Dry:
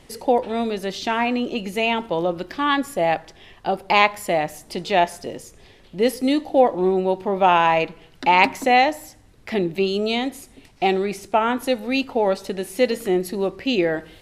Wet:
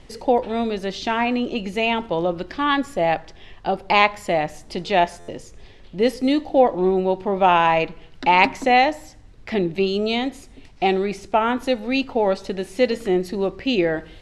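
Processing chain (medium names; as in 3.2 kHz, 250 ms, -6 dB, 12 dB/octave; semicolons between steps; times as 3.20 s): low-pass 6.8 kHz 12 dB/octave; bass shelf 65 Hz +11 dB; buffer glitch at 5.19 s, samples 512, times 7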